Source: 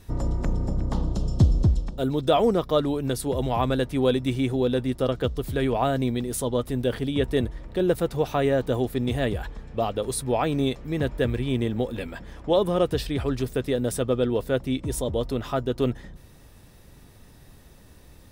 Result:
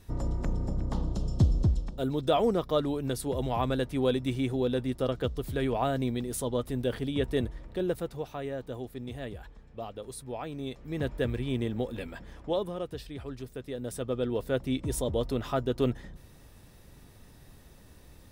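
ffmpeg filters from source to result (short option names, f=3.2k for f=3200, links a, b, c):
-af "volume=13.5dB,afade=t=out:st=7.55:d=0.76:silence=0.375837,afade=t=in:st=10.62:d=0.43:silence=0.398107,afade=t=out:st=12.35:d=0.41:silence=0.398107,afade=t=in:st=13.65:d=1.19:silence=0.298538"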